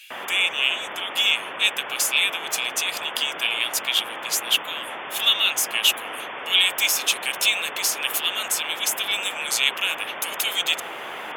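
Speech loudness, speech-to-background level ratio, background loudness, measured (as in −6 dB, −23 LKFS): −22.0 LKFS, 11.0 dB, −33.0 LKFS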